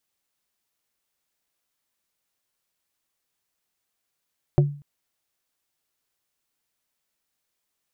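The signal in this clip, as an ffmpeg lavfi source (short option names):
-f lavfi -i "aevalsrc='0.282*pow(10,-3*t/0.41)*sin(2*PI*144*t)+0.158*pow(10,-3*t/0.137)*sin(2*PI*360*t)+0.0891*pow(10,-3*t/0.078)*sin(2*PI*576*t)+0.0501*pow(10,-3*t/0.059)*sin(2*PI*720*t)':d=0.24:s=44100"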